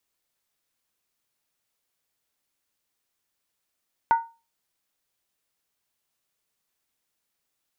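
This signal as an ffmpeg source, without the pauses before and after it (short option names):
-f lavfi -i "aevalsrc='0.237*pow(10,-3*t/0.3)*sin(2*PI*920*t)+0.0596*pow(10,-3*t/0.238)*sin(2*PI*1466.5*t)+0.015*pow(10,-3*t/0.205)*sin(2*PI*1965.1*t)+0.00376*pow(10,-3*t/0.198)*sin(2*PI*2112.3*t)+0.000944*pow(10,-3*t/0.184)*sin(2*PI*2440.8*t)':d=0.63:s=44100"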